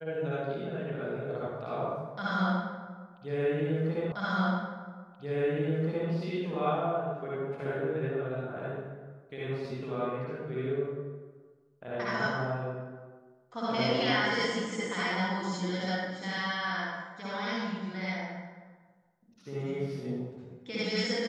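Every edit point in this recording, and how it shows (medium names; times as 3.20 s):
4.12 s: repeat of the last 1.98 s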